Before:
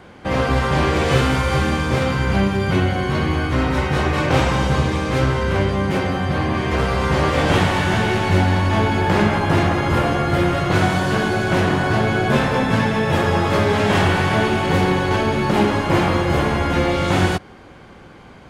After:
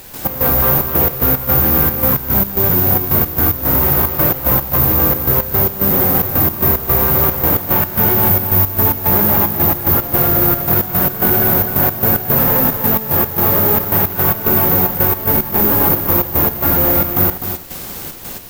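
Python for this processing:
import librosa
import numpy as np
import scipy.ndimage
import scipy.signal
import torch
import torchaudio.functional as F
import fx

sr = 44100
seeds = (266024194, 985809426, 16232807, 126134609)

p1 = scipy.signal.sosfilt(scipy.signal.butter(2, 1300.0, 'lowpass', fs=sr, output='sos'), x)
p2 = fx.over_compress(p1, sr, threshold_db=-22.0, ratio=-1.0)
p3 = p1 + F.gain(torch.from_numpy(p2), 2.0).numpy()
p4 = np.clip(10.0 ** (13.5 / 20.0) * p3, -1.0, 1.0) / 10.0 ** (13.5 / 20.0)
p5 = fx.quant_dither(p4, sr, seeds[0], bits=6, dither='triangular')
p6 = fx.step_gate(p5, sr, bpm=111, pattern='.x.xxx.x', floor_db=-12.0, edge_ms=4.5)
p7 = fx.dmg_noise_colour(p6, sr, seeds[1], colour='pink', level_db=-41.0)
p8 = (np.kron(p7[::3], np.eye(3)[0]) * 3)[:len(p7)]
p9 = p8 + fx.echo_single(p8, sr, ms=253, db=-9.0, dry=0)
y = F.gain(torch.from_numpy(p9), -1.5).numpy()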